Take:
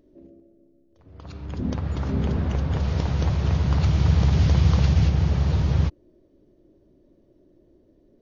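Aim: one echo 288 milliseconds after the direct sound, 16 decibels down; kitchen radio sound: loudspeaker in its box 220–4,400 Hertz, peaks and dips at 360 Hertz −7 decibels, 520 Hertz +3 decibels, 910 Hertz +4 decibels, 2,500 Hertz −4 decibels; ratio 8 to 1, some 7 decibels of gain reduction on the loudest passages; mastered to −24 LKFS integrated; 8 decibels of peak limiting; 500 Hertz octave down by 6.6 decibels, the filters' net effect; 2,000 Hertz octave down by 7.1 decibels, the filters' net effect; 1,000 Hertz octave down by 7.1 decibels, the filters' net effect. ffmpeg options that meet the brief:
ffmpeg -i in.wav -af "equalizer=frequency=500:width_type=o:gain=-5,equalizer=frequency=1000:width_type=o:gain=-9,equalizer=frequency=2000:width_type=o:gain=-4.5,acompressor=threshold=-21dB:ratio=8,alimiter=limit=-22.5dB:level=0:latency=1,highpass=220,equalizer=frequency=360:width_type=q:width=4:gain=-7,equalizer=frequency=520:width_type=q:width=4:gain=3,equalizer=frequency=910:width_type=q:width=4:gain=4,equalizer=frequency=2500:width_type=q:width=4:gain=-4,lowpass=frequency=4400:width=0.5412,lowpass=frequency=4400:width=1.3066,aecho=1:1:288:0.158,volume=17.5dB" out.wav

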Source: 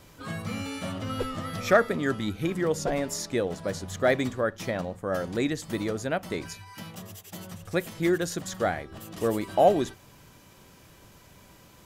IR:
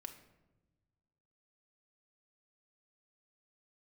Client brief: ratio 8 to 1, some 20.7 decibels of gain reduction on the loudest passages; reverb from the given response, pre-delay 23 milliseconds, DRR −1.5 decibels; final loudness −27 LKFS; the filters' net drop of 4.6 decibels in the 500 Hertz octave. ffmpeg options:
-filter_complex "[0:a]equalizer=frequency=500:width_type=o:gain=-6,acompressor=threshold=-40dB:ratio=8,asplit=2[link_01][link_02];[1:a]atrim=start_sample=2205,adelay=23[link_03];[link_02][link_03]afir=irnorm=-1:irlink=0,volume=6dB[link_04];[link_01][link_04]amix=inputs=2:normalize=0,volume=13.5dB"

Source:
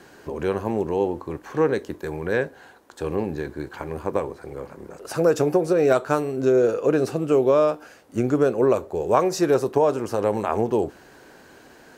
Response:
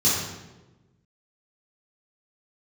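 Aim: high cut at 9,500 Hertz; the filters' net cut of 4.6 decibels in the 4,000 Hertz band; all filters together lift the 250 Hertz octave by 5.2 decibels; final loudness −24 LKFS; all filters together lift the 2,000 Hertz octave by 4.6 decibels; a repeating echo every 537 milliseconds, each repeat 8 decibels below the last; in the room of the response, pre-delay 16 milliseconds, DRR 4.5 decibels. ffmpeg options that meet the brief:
-filter_complex "[0:a]lowpass=9500,equalizer=frequency=250:width_type=o:gain=7,equalizer=frequency=2000:width_type=o:gain=8,equalizer=frequency=4000:width_type=o:gain=-8.5,aecho=1:1:537|1074|1611|2148|2685:0.398|0.159|0.0637|0.0255|0.0102,asplit=2[link_01][link_02];[1:a]atrim=start_sample=2205,adelay=16[link_03];[link_02][link_03]afir=irnorm=-1:irlink=0,volume=-19dB[link_04];[link_01][link_04]amix=inputs=2:normalize=0,volume=-6.5dB"

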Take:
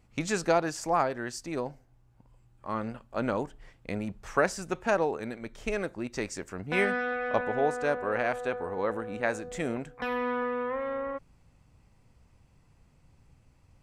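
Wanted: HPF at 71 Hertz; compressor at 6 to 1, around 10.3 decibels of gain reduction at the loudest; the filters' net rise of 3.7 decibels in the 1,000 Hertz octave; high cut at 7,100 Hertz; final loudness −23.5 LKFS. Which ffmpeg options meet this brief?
ffmpeg -i in.wav -af "highpass=71,lowpass=7100,equalizer=frequency=1000:width_type=o:gain=5,acompressor=threshold=-28dB:ratio=6,volume=11dB" out.wav

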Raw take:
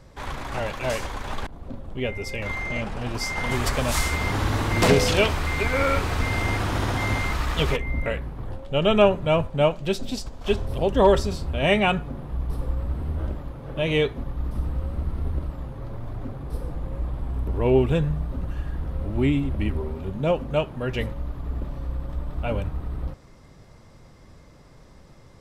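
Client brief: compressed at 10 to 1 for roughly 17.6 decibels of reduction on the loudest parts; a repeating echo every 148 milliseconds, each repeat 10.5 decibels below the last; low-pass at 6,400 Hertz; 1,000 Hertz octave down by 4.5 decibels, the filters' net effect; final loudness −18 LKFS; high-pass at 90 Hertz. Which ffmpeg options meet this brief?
ffmpeg -i in.wav -af "highpass=90,lowpass=6400,equalizer=frequency=1000:width_type=o:gain=-6,acompressor=threshold=-32dB:ratio=10,aecho=1:1:148|296|444:0.299|0.0896|0.0269,volume=18.5dB" out.wav

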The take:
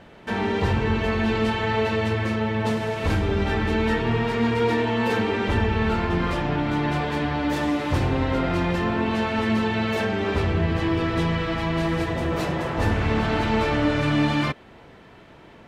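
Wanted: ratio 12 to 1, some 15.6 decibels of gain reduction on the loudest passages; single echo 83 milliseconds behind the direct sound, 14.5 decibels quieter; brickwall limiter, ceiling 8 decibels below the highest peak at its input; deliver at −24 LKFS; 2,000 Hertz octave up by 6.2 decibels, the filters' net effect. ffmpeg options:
ffmpeg -i in.wav -af "equalizer=frequency=2000:width_type=o:gain=7.5,acompressor=threshold=-33dB:ratio=12,alimiter=level_in=6.5dB:limit=-24dB:level=0:latency=1,volume=-6.5dB,aecho=1:1:83:0.188,volume=15dB" out.wav

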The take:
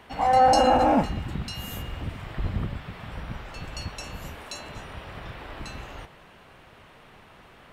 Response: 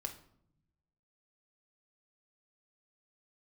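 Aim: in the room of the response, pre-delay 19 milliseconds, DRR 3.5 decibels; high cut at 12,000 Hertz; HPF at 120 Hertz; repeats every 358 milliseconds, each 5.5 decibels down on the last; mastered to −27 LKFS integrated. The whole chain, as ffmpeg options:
-filter_complex "[0:a]highpass=120,lowpass=12000,aecho=1:1:358|716|1074|1432|1790|2148|2506:0.531|0.281|0.149|0.079|0.0419|0.0222|0.0118,asplit=2[link_01][link_02];[1:a]atrim=start_sample=2205,adelay=19[link_03];[link_02][link_03]afir=irnorm=-1:irlink=0,volume=-2dB[link_04];[link_01][link_04]amix=inputs=2:normalize=0,volume=-3dB"

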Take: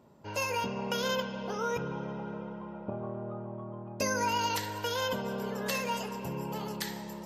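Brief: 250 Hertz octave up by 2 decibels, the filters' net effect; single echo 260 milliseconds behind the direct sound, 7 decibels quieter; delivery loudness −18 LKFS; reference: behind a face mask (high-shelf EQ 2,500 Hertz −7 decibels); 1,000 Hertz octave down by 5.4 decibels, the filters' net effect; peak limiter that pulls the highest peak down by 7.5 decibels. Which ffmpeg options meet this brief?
ffmpeg -i in.wav -af "equalizer=frequency=250:width_type=o:gain=3,equalizer=frequency=1000:width_type=o:gain=-5,alimiter=level_in=1.5dB:limit=-24dB:level=0:latency=1,volume=-1.5dB,highshelf=frequency=2500:gain=-7,aecho=1:1:260:0.447,volume=17.5dB" out.wav

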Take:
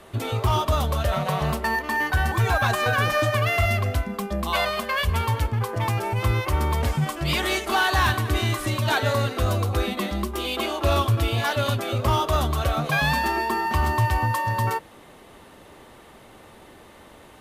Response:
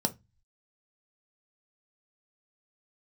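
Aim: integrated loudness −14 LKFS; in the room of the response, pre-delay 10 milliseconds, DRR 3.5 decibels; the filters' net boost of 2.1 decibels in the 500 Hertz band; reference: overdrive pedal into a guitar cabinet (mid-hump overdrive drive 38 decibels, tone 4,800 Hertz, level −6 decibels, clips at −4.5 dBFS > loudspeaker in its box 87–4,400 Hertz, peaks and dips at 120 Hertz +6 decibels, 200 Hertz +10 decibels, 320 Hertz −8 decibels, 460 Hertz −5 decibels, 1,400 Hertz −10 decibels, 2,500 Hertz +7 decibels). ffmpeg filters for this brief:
-filter_complex "[0:a]equalizer=frequency=500:width_type=o:gain=5.5,asplit=2[link_01][link_02];[1:a]atrim=start_sample=2205,adelay=10[link_03];[link_02][link_03]afir=irnorm=-1:irlink=0,volume=-9.5dB[link_04];[link_01][link_04]amix=inputs=2:normalize=0,asplit=2[link_05][link_06];[link_06]highpass=frequency=720:poles=1,volume=38dB,asoftclip=type=tanh:threshold=-4.5dB[link_07];[link_05][link_07]amix=inputs=2:normalize=0,lowpass=frequency=4800:poles=1,volume=-6dB,highpass=87,equalizer=frequency=120:width_type=q:width=4:gain=6,equalizer=frequency=200:width_type=q:width=4:gain=10,equalizer=frequency=320:width_type=q:width=4:gain=-8,equalizer=frequency=460:width_type=q:width=4:gain=-5,equalizer=frequency=1400:width_type=q:width=4:gain=-10,equalizer=frequency=2500:width_type=q:width=4:gain=7,lowpass=frequency=4400:width=0.5412,lowpass=frequency=4400:width=1.3066,volume=-3dB"

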